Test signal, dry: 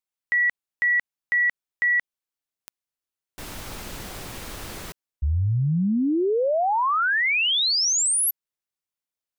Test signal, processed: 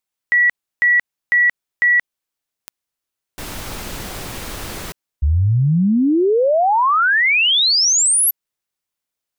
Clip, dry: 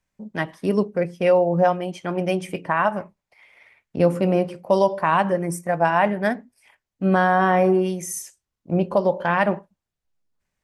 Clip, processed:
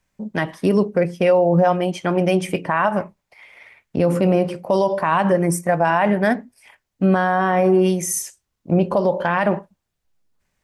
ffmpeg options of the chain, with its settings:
ffmpeg -i in.wav -af "alimiter=level_in=13.5dB:limit=-1dB:release=50:level=0:latency=1,volume=-6.5dB" out.wav

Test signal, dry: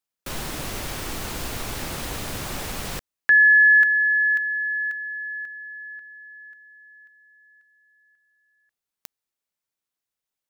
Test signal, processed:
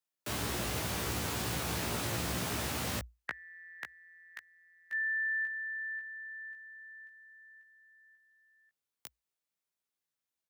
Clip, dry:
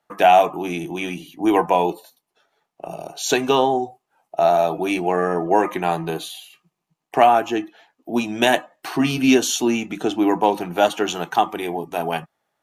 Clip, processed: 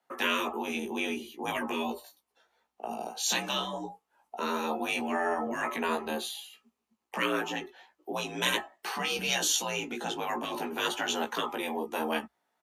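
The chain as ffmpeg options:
ffmpeg -i in.wav -filter_complex "[0:a]afftfilt=real='re*lt(hypot(re,im),0.355)':imag='im*lt(hypot(re,im),0.355)':win_size=1024:overlap=0.75,asplit=2[link_01][link_02];[link_02]adelay=17,volume=-3.5dB[link_03];[link_01][link_03]amix=inputs=2:normalize=0,afreqshift=58,volume=-5.5dB" out.wav

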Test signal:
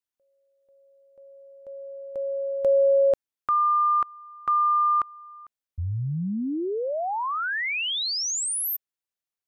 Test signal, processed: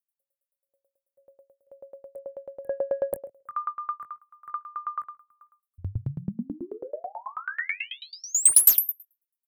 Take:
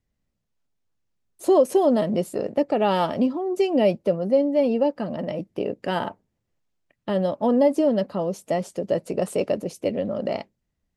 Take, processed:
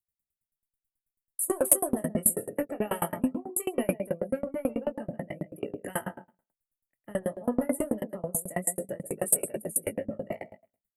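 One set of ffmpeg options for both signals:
ffmpeg -i in.wav -filter_complex "[0:a]equalizer=frequency=125:width_type=o:width=1:gain=4,equalizer=frequency=1000:width_type=o:width=1:gain=-4,equalizer=frequency=2000:width_type=o:width=1:gain=10,equalizer=frequency=4000:width_type=o:width=1:gain=-12,equalizer=frequency=8000:width_type=o:width=1:gain=6,asplit=2[link_01][link_02];[link_02]adelay=133,lowpass=frequency=3100:poles=1,volume=-8dB,asplit=2[link_03][link_04];[link_04]adelay=133,lowpass=frequency=3100:poles=1,volume=0.22,asplit=2[link_05][link_06];[link_06]adelay=133,lowpass=frequency=3100:poles=1,volume=0.22[link_07];[link_01][link_03][link_05][link_07]amix=inputs=4:normalize=0,acrossover=split=220|740|5800[link_08][link_09][link_10][link_11];[link_09]asoftclip=type=tanh:threshold=-20.5dB[link_12];[link_08][link_12][link_10][link_11]amix=inputs=4:normalize=0,aexciter=amount=12:drive=9.3:freq=8400,afftdn=noise_reduction=14:noise_floor=-37,adynamicequalizer=threshold=0.0141:dfrequency=1500:dqfactor=1.8:tfrequency=1500:tqfactor=1.8:attack=5:release=100:ratio=0.375:range=1.5:mode=cutabove:tftype=bell,flanger=delay=18.5:depth=5.7:speed=0.2,asoftclip=type=hard:threshold=-10dB,aeval=exprs='val(0)*pow(10,-30*if(lt(mod(9.2*n/s,1),2*abs(9.2)/1000),1-mod(9.2*n/s,1)/(2*abs(9.2)/1000),(mod(9.2*n/s,1)-2*abs(9.2)/1000)/(1-2*abs(9.2)/1000))/20)':channel_layout=same,volume=2.5dB" out.wav

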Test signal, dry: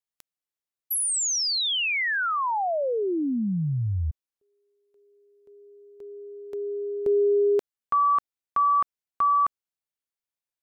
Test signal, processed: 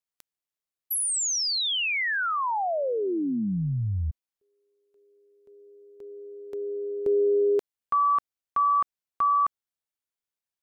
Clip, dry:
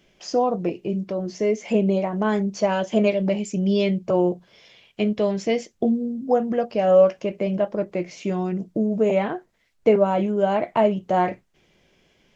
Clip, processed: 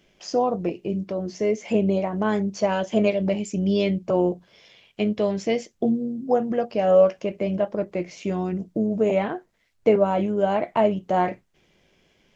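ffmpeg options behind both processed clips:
ffmpeg -i in.wav -af "tremolo=f=100:d=0.261" out.wav

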